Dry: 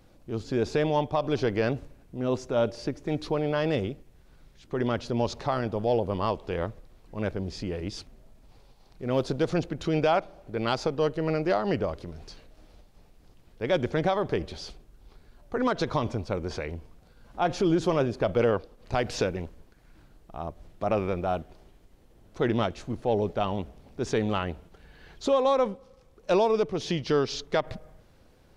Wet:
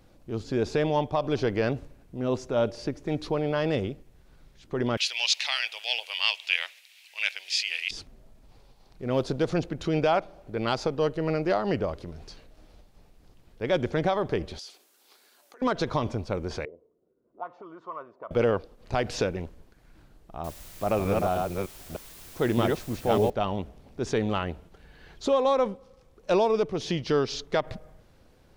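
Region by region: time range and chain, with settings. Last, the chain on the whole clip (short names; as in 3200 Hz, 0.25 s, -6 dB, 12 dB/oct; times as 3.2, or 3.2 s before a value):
4.97–7.91 HPF 920 Hz 24 dB/oct + resonant high shelf 1700 Hz +13.5 dB, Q 3
14.59–15.62 HPF 270 Hz 24 dB/oct + compressor 5:1, threshold -49 dBFS + tilt +4 dB/oct
16.65–18.31 high shelf 2500 Hz -7 dB + auto-wah 350–1100 Hz, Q 4.6, up, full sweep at -22.5 dBFS + notch comb 810 Hz
20.44–23.3 reverse delay 0.305 s, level -1.5 dB + requantised 8-bit, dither triangular
whole clip: dry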